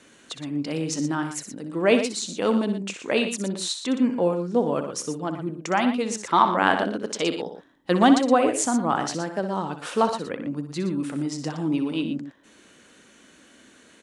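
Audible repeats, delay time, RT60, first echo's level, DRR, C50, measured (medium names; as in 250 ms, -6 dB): 2, 62 ms, no reverb, -10.0 dB, no reverb, no reverb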